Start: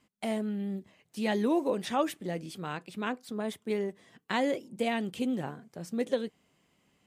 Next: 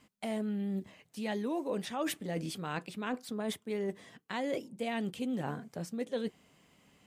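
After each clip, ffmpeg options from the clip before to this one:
-af "bandreject=f=360:w=12,areverse,acompressor=threshold=0.0126:ratio=6,areverse,volume=1.88"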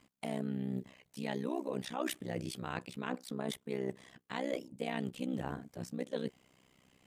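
-af "tremolo=f=64:d=0.974,volume=1.19"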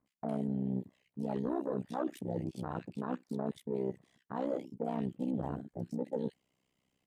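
-filter_complex "[0:a]acrossover=split=1500[s0][s1];[s1]adelay=60[s2];[s0][s2]amix=inputs=2:normalize=0,aeval=exprs='0.0794*(cos(1*acos(clip(val(0)/0.0794,-1,1)))-cos(1*PI/2))+0.01*(cos(5*acos(clip(val(0)/0.0794,-1,1)))-cos(5*PI/2))':c=same,afwtdn=0.0126"

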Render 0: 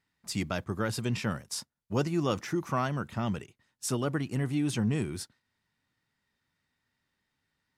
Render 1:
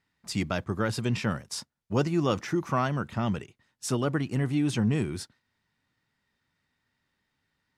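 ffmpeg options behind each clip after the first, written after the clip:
-af "highshelf=f=10000:g=-10.5,volume=1.41"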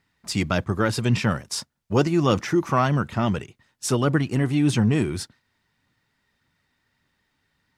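-af "aphaser=in_gain=1:out_gain=1:delay=3.5:decay=0.25:speed=1.7:type=triangular,volume=2"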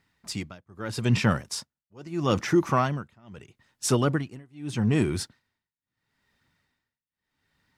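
-af "tremolo=f=0.78:d=0.98"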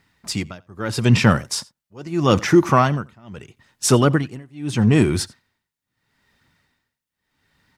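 -af "aecho=1:1:86:0.0631,volume=2.51"

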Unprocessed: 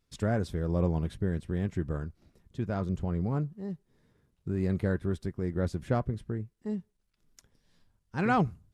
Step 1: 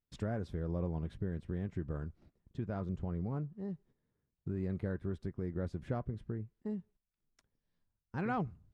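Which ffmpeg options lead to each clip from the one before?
-af "agate=range=0.2:threshold=0.00141:ratio=16:detection=peak,lowpass=f=2200:p=1,acompressor=threshold=0.0141:ratio=2,volume=0.891"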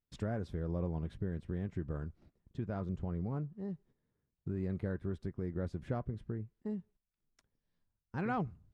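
-af anull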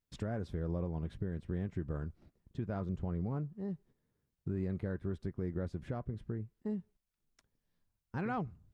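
-af "alimiter=level_in=1.68:limit=0.0631:level=0:latency=1:release=343,volume=0.596,volume=1.19"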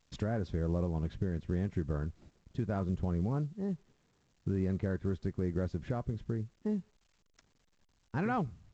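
-af "volume=1.58" -ar 16000 -c:a pcm_alaw

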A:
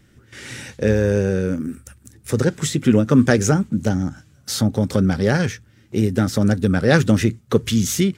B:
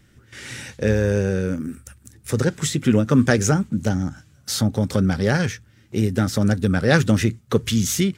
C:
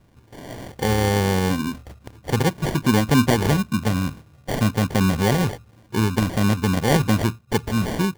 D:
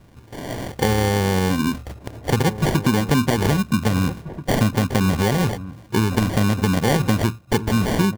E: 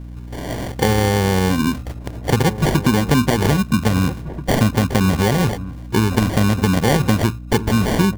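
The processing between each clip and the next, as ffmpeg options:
-af "equalizer=f=340:t=o:w=2.1:g=-3"
-filter_complex "[0:a]dynaudnorm=f=250:g=9:m=3.76,asplit=2[s0][s1];[s1]alimiter=limit=0.266:level=0:latency=1:release=415,volume=0.841[s2];[s0][s2]amix=inputs=2:normalize=0,acrusher=samples=34:mix=1:aa=0.000001,volume=0.501"
-filter_complex "[0:a]acompressor=threshold=0.0891:ratio=6,asplit=2[s0][s1];[s1]adelay=1633,volume=0.224,highshelf=f=4000:g=-36.7[s2];[s0][s2]amix=inputs=2:normalize=0,volume=2.11"
-af "aeval=exprs='val(0)+0.02*(sin(2*PI*60*n/s)+sin(2*PI*2*60*n/s)/2+sin(2*PI*3*60*n/s)/3+sin(2*PI*4*60*n/s)/4+sin(2*PI*5*60*n/s)/5)':c=same,volume=1.33"

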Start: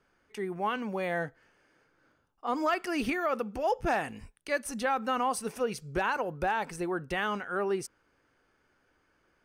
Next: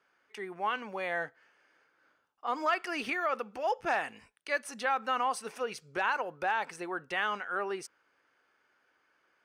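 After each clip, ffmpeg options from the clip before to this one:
-af "highpass=f=1200:p=1,aemphasis=mode=reproduction:type=50kf,volume=1.58"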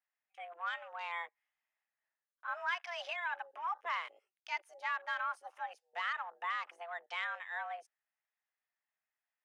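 -af "afreqshift=340,afwtdn=0.00631,volume=0.447"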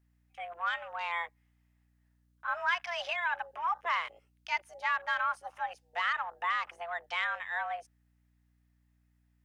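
-af "aeval=exprs='val(0)+0.000178*(sin(2*PI*60*n/s)+sin(2*PI*2*60*n/s)/2+sin(2*PI*3*60*n/s)/3+sin(2*PI*4*60*n/s)/4+sin(2*PI*5*60*n/s)/5)':c=same,volume=2"

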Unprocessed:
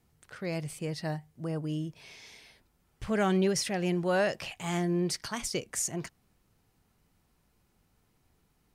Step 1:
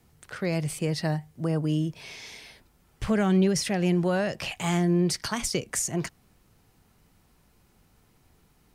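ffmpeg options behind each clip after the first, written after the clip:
-filter_complex "[0:a]acrossover=split=230[s0][s1];[s1]acompressor=threshold=0.02:ratio=4[s2];[s0][s2]amix=inputs=2:normalize=0,volume=2.51"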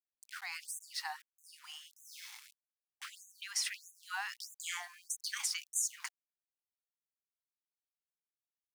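-af "aeval=exprs='val(0)*gte(abs(val(0)),0.00841)':c=same,afftfilt=real='re*gte(b*sr/1024,690*pow(6200/690,0.5+0.5*sin(2*PI*1.6*pts/sr)))':imag='im*gte(b*sr/1024,690*pow(6200/690,0.5+0.5*sin(2*PI*1.6*pts/sr)))':win_size=1024:overlap=0.75,volume=0.596"

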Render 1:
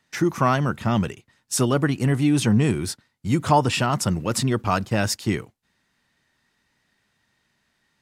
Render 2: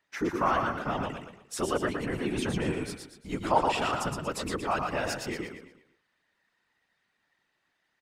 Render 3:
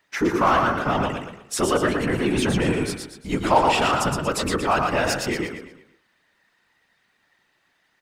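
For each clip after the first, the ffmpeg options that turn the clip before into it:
-af "bass=f=250:g=-12,treble=f=4000:g=-8,aecho=1:1:117|234|351|468|585:0.631|0.246|0.096|0.0374|0.0146,afftfilt=real='hypot(re,im)*cos(2*PI*random(0))':imag='hypot(re,im)*sin(2*PI*random(1))':win_size=512:overlap=0.75"
-filter_complex "[0:a]bandreject=f=54.08:t=h:w=4,bandreject=f=108.16:t=h:w=4,bandreject=f=162.24:t=h:w=4,bandreject=f=216.32:t=h:w=4,bandreject=f=270.4:t=h:w=4,bandreject=f=324.48:t=h:w=4,bandreject=f=378.56:t=h:w=4,bandreject=f=432.64:t=h:w=4,bandreject=f=486.72:t=h:w=4,bandreject=f=540.8:t=h:w=4,bandreject=f=594.88:t=h:w=4,bandreject=f=648.96:t=h:w=4,bandreject=f=703.04:t=h:w=4,bandreject=f=757.12:t=h:w=4,bandreject=f=811.2:t=h:w=4,bandreject=f=865.28:t=h:w=4,bandreject=f=919.36:t=h:w=4,bandreject=f=973.44:t=h:w=4,bandreject=f=1027.52:t=h:w=4,bandreject=f=1081.6:t=h:w=4,bandreject=f=1135.68:t=h:w=4,bandreject=f=1189.76:t=h:w=4,bandreject=f=1243.84:t=h:w=4,bandreject=f=1297.92:t=h:w=4,bandreject=f=1352:t=h:w=4,bandreject=f=1406.08:t=h:w=4,bandreject=f=1460.16:t=h:w=4,bandreject=f=1514.24:t=h:w=4,bandreject=f=1568.32:t=h:w=4,bandreject=f=1622.4:t=h:w=4,bandreject=f=1676.48:t=h:w=4,bandreject=f=1730.56:t=h:w=4,bandreject=f=1784.64:t=h:w=4,bandreject=f=1838.72:t=h:w=4,asplit=2[s0][s1];[s1]asoftclip=type=hard:threshold=0.0447,volume=0.631[s2];[s0][s2]amix=inputs=2:normalize=0,volume=1.88"

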